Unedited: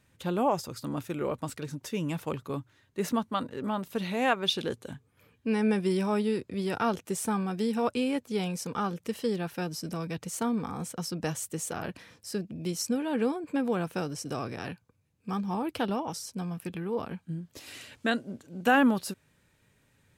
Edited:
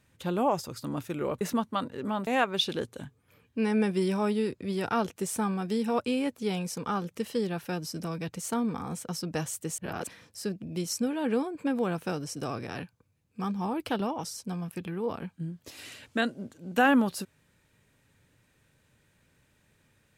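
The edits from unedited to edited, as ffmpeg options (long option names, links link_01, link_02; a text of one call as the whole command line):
ffmpeg -i in.wav -filter_complex "[0:a]asplit=5[link_01][link_02][link_03][link_04][link_05];[link_01]atrim=end=1.412[link_06];[link_02]atrim=start=2.998:end=3.862[link_07];[link_03]atrim=start=4.158:end=11.672[link_08];[link_04]atrim=start=11.668:end=11.962,asetpts=PTS-STARTPTS,areverse[link_09];[link_05]atrim=start=11.958[link_10];[link_06][link_07]acrossfade=duration=0.004:curve1=hsin:curve2=hsin[link_11];[link_11][link_08]acrossfade=duration=0.004:curve1=hsin:curve2=hsin[link_12];[link_12][link_09]acrossfade=duration=0.004:curve1=hsin:curve2=hsin[link_13];[link_13][link_10]acrossfade=duration=0.004:curve1=hsin:curve2=hsin" out.wav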